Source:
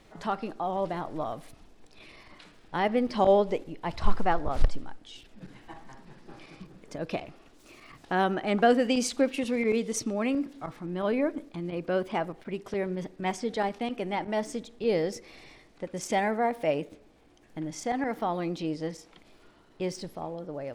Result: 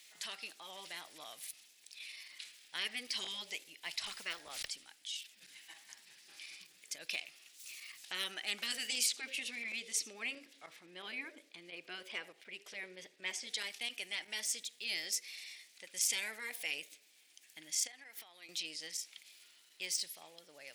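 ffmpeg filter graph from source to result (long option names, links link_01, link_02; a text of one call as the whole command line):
ffmpeg -i in.wav -filter_complex "[0:a]asettb=1/sr,asplit=3[link_01][link_02][link_03];[link_01]atrim=end=9.064[link_04];[link_02]atrim=start=9.06:end=13.47,asetpts=PTS-STARTPTS,afade=type=in:duration=0.004:curve=qsin,afade=type=out:start_time=4.406:duration=0.004:curve=qsin,lowpass=frequency=2500:poles=1,equalizer=frequency=480:width=1.5:gain=7.5,aecho=1:1:78:0.0794,atrim=end_sample=194481[link_05];[link_03]atrim=start=13.466[link_06];[link_04][link_05]acrossfade=duration=0.004:curve1=hsin:curve2=qsin[link_07];[link_07][link_06]acrossfade=duration=0.004:curve1=qsin:curve2=hsin,asettb=1/sr,asplit=3[link_08][link_09][link_10];[link_08]atrim=end=17.874[link_11];[link_09]atrim=start=17.87:end=18.49,asetpts=PTS-STARTPTS,afade=type=in:duration=0.004:curve=qsin,afade=type=out:start_time=0.616:duration=0.004:curve=qsin,highpass=230,acompressor=threshold=-38dB:ratio=12:attack=3.2:release=140:knee=1:detection=peak[link_12];[link_10]atrim=start=18.486[link_13];[link_11][link_12]acrossfade=duration=0.004:curve1=hsin:curve2=qsin[link_14];[link_14][link_13]acrossfade=duration=0.004:curve1=qsin:curve2=hsin,aderivative,afftfilt=real='re*lt(hypot(re,im),0.0282)':imag='im*lt(hypot(re,im),0.0282)':win_size=1024:overlap=0.75,highshelf=frequency=1600:width_type=q:width=1.5:gain=9,volume=1dB" out.wav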